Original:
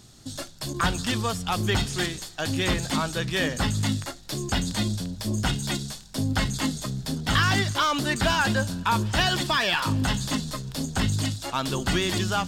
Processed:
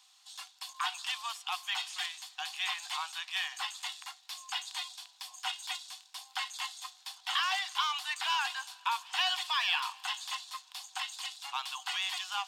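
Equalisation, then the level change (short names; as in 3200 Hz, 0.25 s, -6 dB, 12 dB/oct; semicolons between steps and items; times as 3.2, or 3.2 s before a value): rippled Chebyshev high-pass 730 Hz, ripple 9 dB; -2.5 dB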